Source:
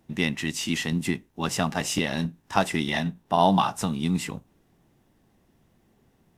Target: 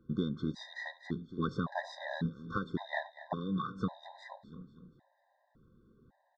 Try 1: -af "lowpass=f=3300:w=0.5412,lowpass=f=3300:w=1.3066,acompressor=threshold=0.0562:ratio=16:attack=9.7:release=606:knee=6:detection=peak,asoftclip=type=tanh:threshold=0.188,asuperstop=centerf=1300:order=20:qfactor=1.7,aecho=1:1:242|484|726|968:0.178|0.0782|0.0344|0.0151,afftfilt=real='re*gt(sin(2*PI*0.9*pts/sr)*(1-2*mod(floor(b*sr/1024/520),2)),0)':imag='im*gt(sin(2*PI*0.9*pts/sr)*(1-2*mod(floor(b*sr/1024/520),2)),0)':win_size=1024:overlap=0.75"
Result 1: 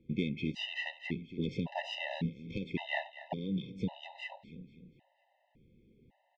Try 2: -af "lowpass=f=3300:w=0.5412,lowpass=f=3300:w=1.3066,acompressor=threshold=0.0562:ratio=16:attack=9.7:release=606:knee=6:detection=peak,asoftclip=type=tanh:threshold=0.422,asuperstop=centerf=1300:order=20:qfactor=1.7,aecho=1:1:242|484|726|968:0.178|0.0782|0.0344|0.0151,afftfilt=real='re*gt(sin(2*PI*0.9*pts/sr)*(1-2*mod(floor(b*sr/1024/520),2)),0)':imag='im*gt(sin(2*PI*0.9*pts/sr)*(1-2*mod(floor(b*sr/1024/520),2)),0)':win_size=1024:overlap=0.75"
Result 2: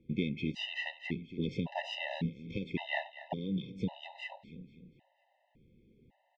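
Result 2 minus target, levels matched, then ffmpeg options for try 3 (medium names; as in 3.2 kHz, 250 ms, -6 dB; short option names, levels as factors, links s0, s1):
1 kHz band -4.5 dB
-af "lowpass=f=3300:w=0.5412,lowpass=f=3300:w=1.3066,acompressor=threshold=0.0562:ratio=16:attack=9.7:release=606:knee=6:detection=peak,asoftclip=type=tanh:threshold=0.422,asuperstop=centerf=2600:order=20:qfactor=1.7,aecho=1:1:242|484|726|968:0.178|0.0782|0.0344|0.0151,afftfilt=real='re*gt(sin(2*PI*0.9*pts/sr)*(1-2*mod(floor(b*sr/1024/520),2)),0)':imag='im*gt(sin(2*PI*0.9*pts/sr)*(1-2*mod(floor(b*sr/1024/520),2)),0)':win_size=1024:overlap=0.75"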